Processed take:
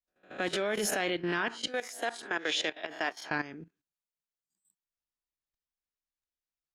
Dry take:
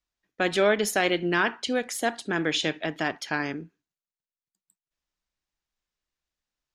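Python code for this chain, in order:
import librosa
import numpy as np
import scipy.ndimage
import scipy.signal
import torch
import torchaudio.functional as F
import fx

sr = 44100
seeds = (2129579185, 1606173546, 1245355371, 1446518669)

y = fx.spec_swells(x, sr, rise_s=0.31)
y = fx.highpass(y, sr, hz=420.0, slope=12, at=(1.67, 3.31))
y = fx.level_steps(y, sr, step_db=14)
y = y * librosa.db_to_amplitude(-2.5)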